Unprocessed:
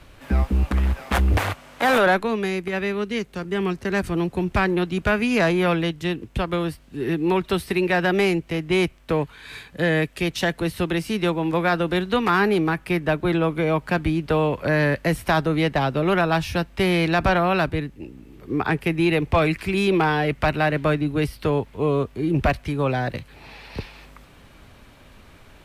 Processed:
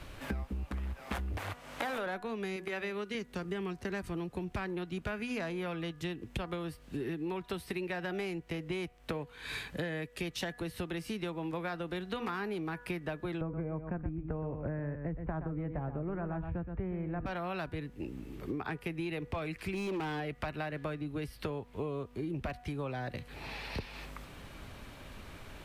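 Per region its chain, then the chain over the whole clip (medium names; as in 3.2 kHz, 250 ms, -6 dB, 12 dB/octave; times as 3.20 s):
2.56–3.15 s: bass shelf 200 Hz -10 dB + de-hum 187.7 Hz, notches 6
13.41–17.26 s: low-pass 2 kHz 24 dB/octave + tilt EQ -3.5 dB/octave + delay 121 ms -9.5 dB
19.73–20.20 s: peaking EQ 280 Hz +5.5 dB 0.56 oct + hard clipper -16.5 dBFS
whole clip: de-hum 243.2 Hz, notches 8; compression 12:1, threshold -34 dBFS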